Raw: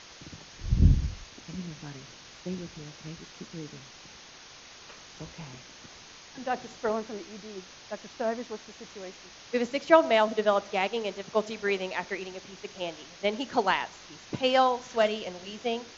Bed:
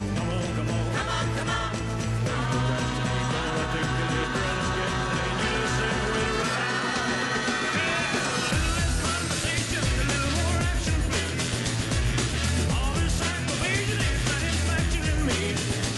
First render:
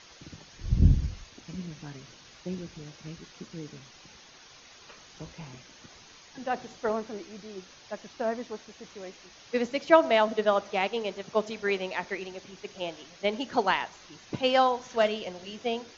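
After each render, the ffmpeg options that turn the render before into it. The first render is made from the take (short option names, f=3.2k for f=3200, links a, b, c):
-af "afftdn=nr=6:nf=-50"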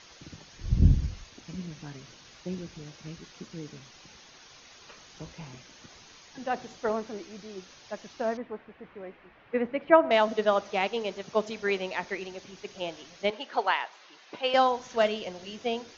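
-filter_complex "[0:a]asettb=1/sr,asplit=3[a][b][c];[a]atrim=end=8.374[d];[b]atrim=start=8.37:end=10.11,asetpts=PTS-STARTPTS,afade=t=in:d=0.004:c=qsin,afade=t=out:st=1.736:d=0.004:c=qsin,lowpass=f=2.3k:w=0.5412,lowpass=f=2.3k:w=1.3066[e];[c]atrim=start=10.106[f];[d][e]acrossfade=d=0.004:c1=hsin:c2=qsin[g];[g][f]acrossfade=d=0.004:c1=qsin:c2=hsin,asettb=1/sr,asplit=3[h][i][j];[h]atrim=end=13.304[k];[i]atrim=start=13.3:end=14.54,asetpts=PTS-STARTPTS,afade=t=in:d=0.004:c=qsin,afade=t=out:st=1.236:d=0.004:c=qsin,highpass=520,lowpass=4.1k[l];[j]atrim=start=14.536[m];[k][l]acrossfade=d=0.004:c1=hsin:c2=qsin[n];[n][m]acrossfade=d=0.004:c1=qsin:c2=hsin"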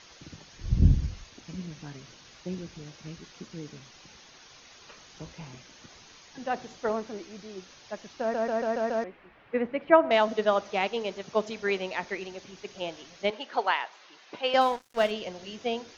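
-filter_complex "[0:a]asettb=1/sr,asplit=3[a][b][c];[a]atrim=end=14.614[d];[b]atrim=start=14.61:end=15.11,asetpts=PTS-STARTPTS,afade=t=in:d=0.004:c=qsin,afade=t=out:st=0.496:d=0.004:c=qsin,aeval=exprs='sgn(val(0))*max(abs(val(0))-0.00944,0)':c=same[e];[c]atrim=start=15.106[f];[d][e]acrossfade=d=0.004:c1=hsin:c2=qsin[g];[g][f]acrossfade=d=0.004:c1=qsin:c2=hsin,asplit=7[h][i][j][k][l][m][n];[h]atrim=end=8.342[o];[i]atrim=start=8.198:end=8.342[p];[j]atrim=start=8.198:end=8.342[q];[k]atrim=start=8.198:end=8.342[r];[l]atrim=start=8.198:end=8.342[s];[m]atrim=start=8.198:end=8.342[t];[n]atrim=start=9.038[u];[o][p]acrossfade=d=0.004:c1=hsin:c2=hsin[v];[v][q]acrossfade=d=0.004:c1=hsin:c2=hsin[w];[w][r]acrossfade=d=0.004:c1=hsin:c2=hsin[x];[x][s]acrossfade=d=0.004:c1=hsin:c2=hsin[y];[y][t]acrossfade=d=0.004:c1=hsin:c2=hsin[z];[z][u]acrossfade=d=0.004:c1=hsin:c2=hsin"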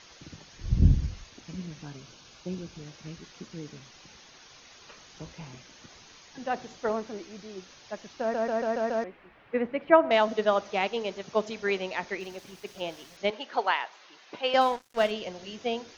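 -filter_complex "[0:a]asettb=1/sr,asplit=3[a][b][c];[a]atrim=end=1.854[d];[b]atrim=start=1.85:end=2.76,asetpts=PTS-STARTPTS,afade=t=in:d=0.004:c=qsin,afade=t=out:st=0.906:d=0.004:c=qsin,bandreject=f=1.9k:w=5.4[e];[c]atrim=start=2.756[f];[d][e]acrossfade=d=0.004:c1=hsin:c2=qsin[g];[g][f]acrossfade=d=0.004:c1=qsin:c2=hsin,asettb=1/sr,asplit=3[h][i][j];[h]atrim=end=12.204[k];[i]atrim=start=12.2:end=13.17,asetpts=PTS-STARTPTS,afade=t=in:d=0.004:c=qsin,afade=t=out:st=0.966:d=0.004:c=qsin,aeval=exprs='val(0)*gte(abs(val(0)),0.00282)':c=same[l];[j]atrim=start=13.166[m];[k][l]acrossfade=d=0.004:c1=hsin:c2=qsin[n];[n][m]acrossfade=d=0.004:c1=qsin:c2=hsin"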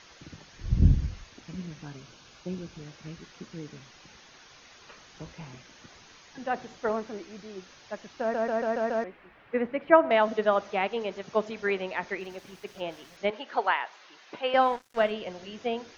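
-filter_complex "[0:a]acrossover=split=3100[a][b];[b]acompressor=threshold=-54dB:ratio=4:attack=1:release=60[c];[a][c]amix=inputs=2:normalize=0,equalizer=f=1.6k:w=1.5:g=2"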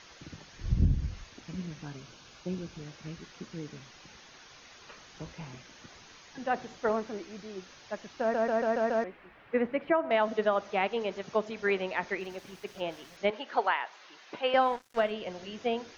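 -af "alimiter=limit=-15dB:level=0:latency=1:release=355"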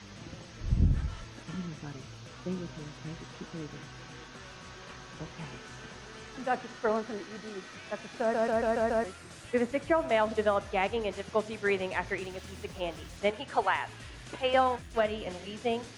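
-filter_complex "[1:a]volume=-22dB[a];[0:a][a]amix=inputs=2:normalize=0"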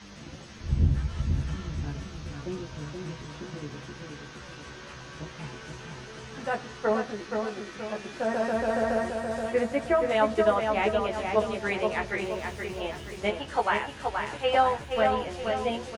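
-filter_complex "[0:a]asplit=2[a][b];[b]adelay=14,volume=-2.5dB[c];[a][c]amix=inputs=2:normalize=0,asplit=2[d][e];[e]adelay=476,lowpass=f=3.7k:p=1,volume=-4.5dB,asplit=2[f][g];[g]adelay=476,lowpass=f=3.7k:p=1,volume=0.46,asplit=2[h][i];[i]adelay=476,lowpass=f=3.7k:p=1,volume=0.46,asplit=2[j][k];[k]adelay=476,lowpass=f=3.7k:p=1,volume=0.46,asplit=2[l][m];[m]adelay=476,lowpass=f=3.7k:p=1,volume=0.46,asplit=2[n][o];[o]adelay=476,lowpass=f=3.7k:p=1,volume=0.46[p];[d][f][h][j][l][n][p]amix=inputs=7:normalize=0"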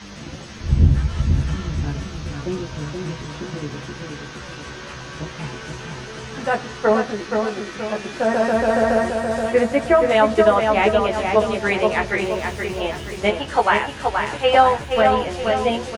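-af "volume=9dB,alimiter=limit=-3dB:level=0:latency=1"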